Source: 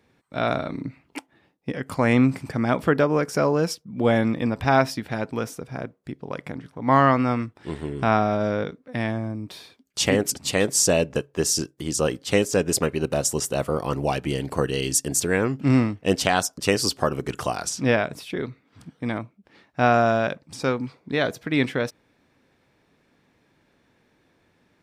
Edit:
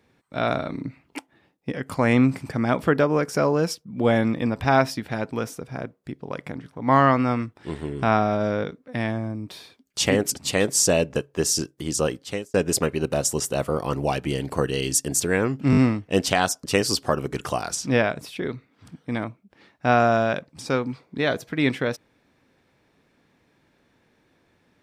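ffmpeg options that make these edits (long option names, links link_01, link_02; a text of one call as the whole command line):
ffmpeg -i in.wav -filter_complex "[0:a]asplit=5[link_01][link_02][link_03][link_04][link_05];[link_01]atrim=end=12.54,asetpts=PTS-STARTPTS,afade=type=out:start_time=12.01:duration=0.53[link_06];[link_02]atrim=start=12.54:end=15.732,asetpts=PTS-STARTPTS,afade=type=in:duration=0.004:curve=hsin[link_07];[link_03]atrim=start=15.708:end=15.732[link_08];[link_04]atrim=start=15.708:end=15.732[link_09];[link_05]atrim=start=15.708[link_10];[link_06][link_07]concat=n=2:v=0:a=1[link_11];[link_11][link_08]acrossfade=duration=0.004:curve1=hsin:curve2=hsin[link_12];[link_12][link_09]acrossfade=duration=0.004:curve1=hsin:curve2=hsin[link_13];[link_13][link_10]acrossfade=duration=0.004:curve1=hsin:curve2=hsin" out.wav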